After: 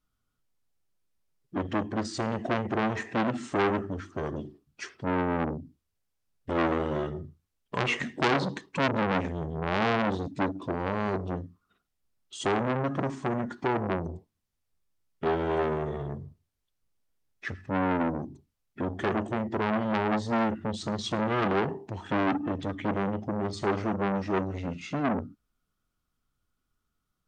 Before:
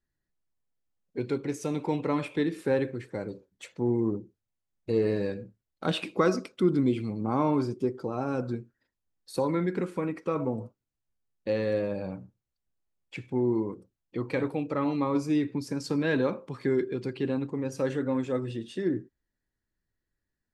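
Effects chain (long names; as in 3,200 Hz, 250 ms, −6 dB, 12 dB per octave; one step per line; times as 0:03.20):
change of speed 0.753×
saturating transformer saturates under 2,400 Hz
level +5 dB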